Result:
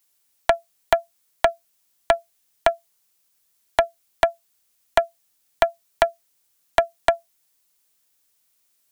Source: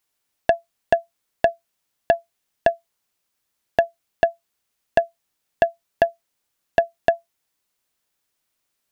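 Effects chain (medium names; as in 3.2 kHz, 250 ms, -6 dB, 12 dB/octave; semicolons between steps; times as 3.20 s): treble shelf 4.4 kHz +11 dB; loudspeaker Doppler distortion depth 0.96 ms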